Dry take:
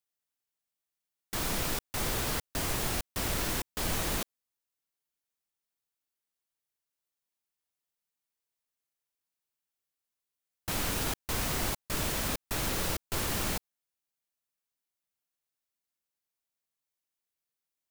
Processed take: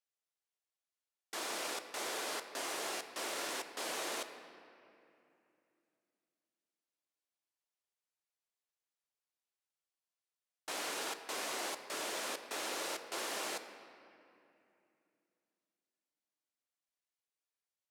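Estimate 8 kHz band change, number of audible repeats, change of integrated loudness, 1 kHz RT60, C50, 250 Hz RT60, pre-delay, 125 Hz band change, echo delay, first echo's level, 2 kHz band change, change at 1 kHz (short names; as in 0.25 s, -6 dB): -6.5 dB, none, -7.0 dB, 2.6 s, 9.5 dB, 3.7 s, 3 ms, -32.5 dB, none, none, -4.5 dB, -4.0 dB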